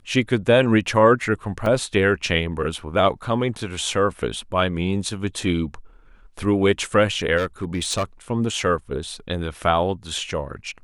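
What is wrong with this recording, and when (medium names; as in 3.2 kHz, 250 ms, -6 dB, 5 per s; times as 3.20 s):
1.66 s: dropout 2.3 ms
7.37–8.03 s: clipped -18 dBFS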